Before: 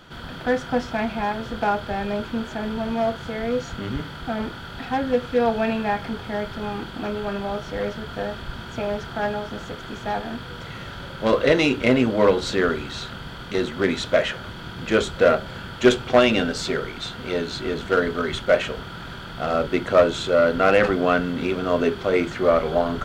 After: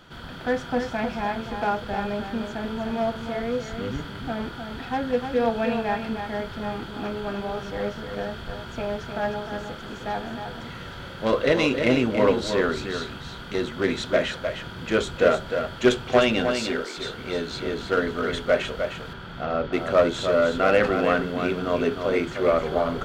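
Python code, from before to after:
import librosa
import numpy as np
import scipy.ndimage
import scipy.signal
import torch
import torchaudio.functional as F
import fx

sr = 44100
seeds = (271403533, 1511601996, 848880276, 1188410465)

y = fx.highpass(x, sr, hz=250.0, slope=24, at=(16.55, 16.98))
y = fx.air_absorb(y, sr, metres=160.0, at=(19.13, 19.73))
y = y + 10.0 ** (-7.0 / 20.0) * np.pad(y, (int(307 * sr / 1000.0), 0))[:len(y)]
y = y * librosa.db_to_amplitude(-3.0)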